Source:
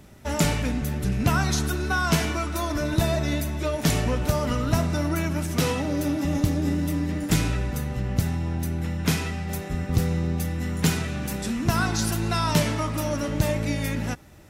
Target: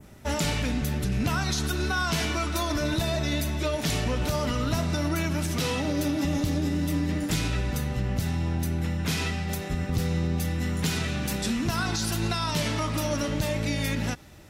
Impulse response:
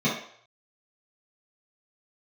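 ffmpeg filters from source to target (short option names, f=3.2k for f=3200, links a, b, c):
-af "adynamicequalizer=threshold=0.00562:dfrequency=3900:dqfactor=0.95:tfrequency=3900:tqfactor=0.95:attack=5:release=100:ratio=0.375:range=3:mode=boostabove:tftype=bell,alimiter=limit=-17.5dB:level=0:latency=1:release=85"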